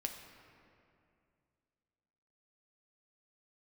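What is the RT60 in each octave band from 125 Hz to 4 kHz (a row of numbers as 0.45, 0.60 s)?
2.8, 2.7, 2.6, 2.3, 2.2, 1.5 s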